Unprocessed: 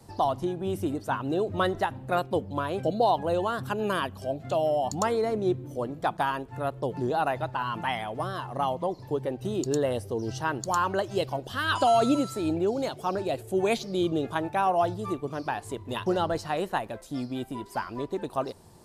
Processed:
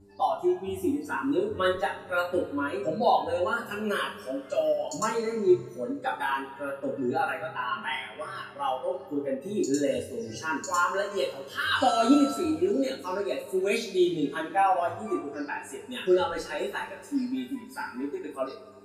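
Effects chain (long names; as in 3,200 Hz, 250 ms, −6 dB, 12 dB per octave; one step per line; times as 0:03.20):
noise reduction from a noise print of the clip's start 16 dB
hum with harmonics 100 Hz, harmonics 4, −51 dBFS −4 dB per octave
coupled-rooms reverb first 0.32 s, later 2.2 s, from −20 dB, DRR −9 dB
level −8 dB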